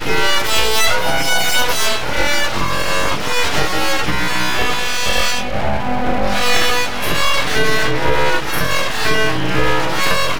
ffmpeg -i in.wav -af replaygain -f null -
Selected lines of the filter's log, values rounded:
track_gain = -1.7 dB
track_peak = 0.608